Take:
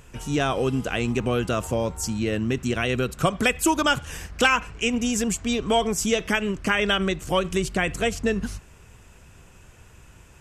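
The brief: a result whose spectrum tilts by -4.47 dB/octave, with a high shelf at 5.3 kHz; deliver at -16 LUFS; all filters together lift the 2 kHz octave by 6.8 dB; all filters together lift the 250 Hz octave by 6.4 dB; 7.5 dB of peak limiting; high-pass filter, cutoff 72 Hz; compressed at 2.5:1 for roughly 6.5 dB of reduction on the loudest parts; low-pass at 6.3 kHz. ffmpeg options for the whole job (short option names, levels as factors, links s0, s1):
-af "highpass=72,lowpass=6300,equalizer=f=250:t=o:g=7.5,equalizer=f=2000:t=o:g=8.5,highshelf=f=5300:g=4.5,acompressor=threshold=0.112:ratio=2.5,volume=2.66,alimiter=limit=0.531:level=0:latency=1"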